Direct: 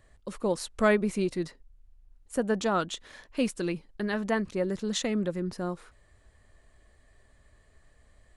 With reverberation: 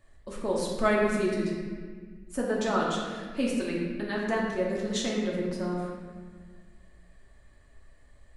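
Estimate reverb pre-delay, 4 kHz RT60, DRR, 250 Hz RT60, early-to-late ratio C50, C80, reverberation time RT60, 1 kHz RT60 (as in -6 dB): 3 ms, 1.1 s, -4.5 dB, 2.2 s, 1.0 dB, 2.5 dB, 1.6 s, 1.6 s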